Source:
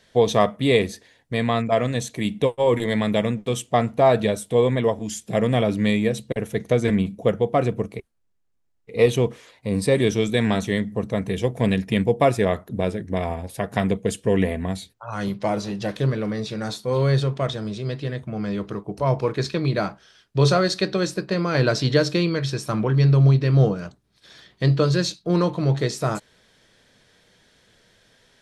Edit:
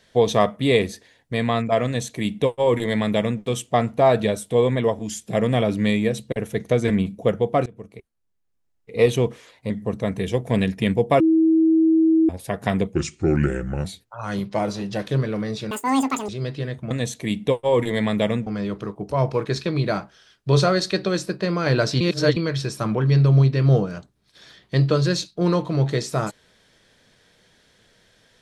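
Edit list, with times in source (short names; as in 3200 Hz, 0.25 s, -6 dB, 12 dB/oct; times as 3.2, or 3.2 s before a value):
1.85–3.41 copy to 18.35
7.66–9.05 fade in equal-power, from -23.5 dB
9.7–10.8 cut
12.3–13.39 bleep 322 Hz -13 dBFS
14.04–14.74 speed 77%
16.6–17.73 speed 196%
21.89–22.25 reverse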